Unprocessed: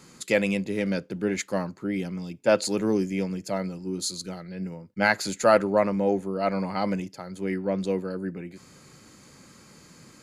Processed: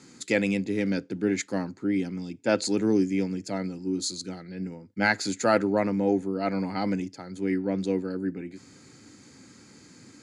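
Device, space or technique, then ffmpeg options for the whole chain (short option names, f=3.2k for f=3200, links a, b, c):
car door speaker: -af "highpass=83,equalizer=f=100:t=q:w=4:g=4,equalizer=f=160:t=q:w=4:g=-5,equalizer=f=280:t=q:w=4:g=7,equalizer=f=590:t=q:w=4:g=-7,equalizer=f=1.1k:t=q:w=4:g=-8,equalizer=f=2.9k:t=q:w=4:g=-4,lowpass=f=8.8k:w=0.5412,lowpass=f=8.8k:w=1.3066"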